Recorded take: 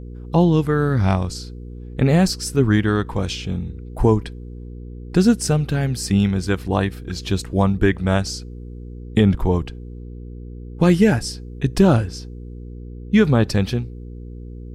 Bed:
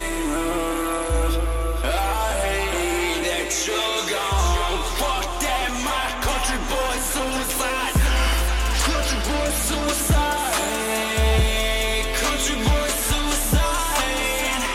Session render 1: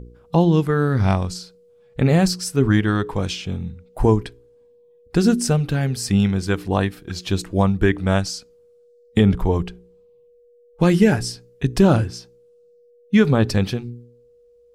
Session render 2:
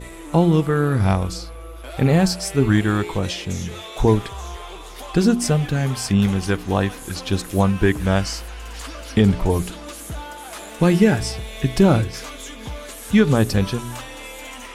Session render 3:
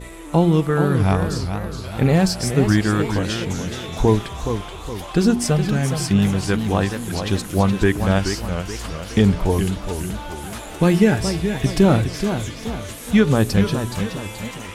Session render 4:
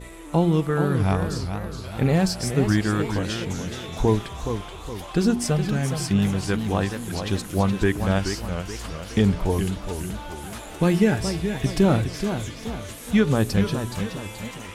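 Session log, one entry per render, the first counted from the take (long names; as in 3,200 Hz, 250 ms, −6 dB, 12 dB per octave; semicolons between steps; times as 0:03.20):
hum removal 60 Hz, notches 7
mix in bed −13 dB
feedback echo with a swinging delay time 422 ms, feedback 45%, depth 193 cents, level −8 dB
level −4 dB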